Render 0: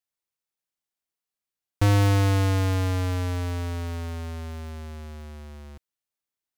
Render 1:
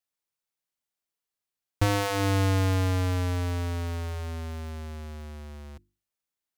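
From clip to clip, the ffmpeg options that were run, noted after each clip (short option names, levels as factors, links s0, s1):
-af "bandreject=f=50:t=h:w=6,bandreject=f=100:t=h:w=6,bandreject=f=150:t=h:w=6,bandreject=f=200:t=h:w=6,bandreject=f=250:t=h:w=6,bandreject=f=300:t=h:w=6,bandreject=f=350:t=h:w=6"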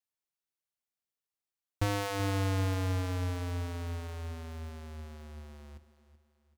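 -af "aecho=1:1:382|764|1146|1528:0.188|0.0753|0.0301|0.0121,volume=0.473"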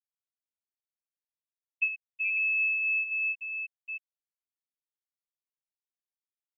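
-af "lowpass=f=2300:t=q:w=0.5098,lowpass=f=2300:t=q:w=0.6013,lowpass=f=2300:t=q:w=0.9,lowpass=f=2300:t=q:w=2.563,afreqshift=-2700,afftfilt=real='re*gte(hypot(re,im),0.2)':imag='im*gte(hypot(re,im),0.2)':win_size=1024:overlap=0.75,volume=1.5"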